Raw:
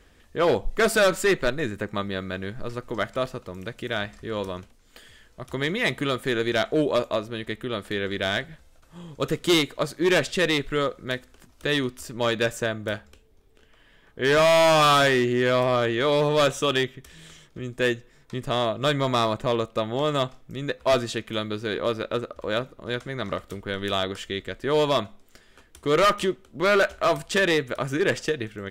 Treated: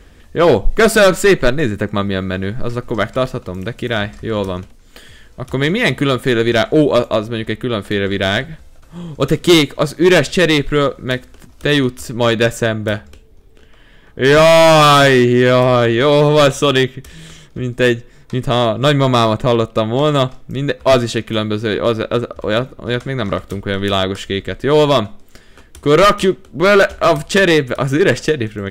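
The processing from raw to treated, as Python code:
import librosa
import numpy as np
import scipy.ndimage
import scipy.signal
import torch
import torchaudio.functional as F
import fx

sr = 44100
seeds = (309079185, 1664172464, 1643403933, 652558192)

y = fx.low_shelf(x, sr, hz=310.0, db=6.0)
y = y * 10.0 ** (8.5 / 20.0)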